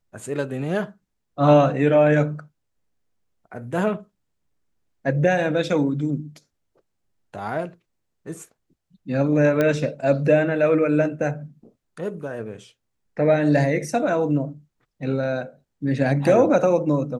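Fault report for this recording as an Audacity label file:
9.610000	9.610000	pop -9 dBFS

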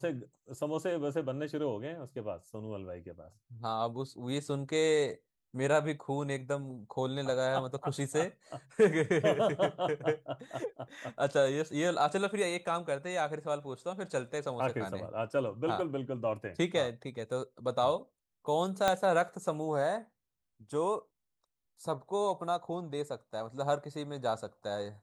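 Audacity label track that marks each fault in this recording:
18.880000	18.880000	pop -13 dBFS

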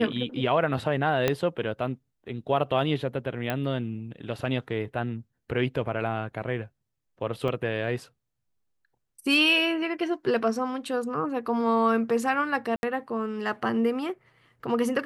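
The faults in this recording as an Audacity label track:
1.280000	1.280000	pop -9 dBFS
3.500000	3.500000	pop -14 dBFS
7.480000	7.480000	gap 3.3 ms
12.760000	12.830000	gap 71 ms

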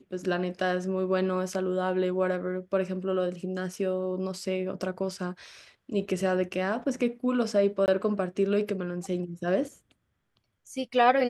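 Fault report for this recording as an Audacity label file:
7.860000	7.880000	gap 19 ms

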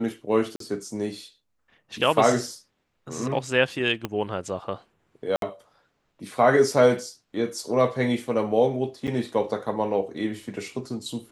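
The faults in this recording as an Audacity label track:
0.560000	0.600000	gap 43 ms
4.050000	4.050000	pop -14 dBFS
5.360000	5.420000	gap 62 ms
9.070000	9.080000	gap 7.5 ms

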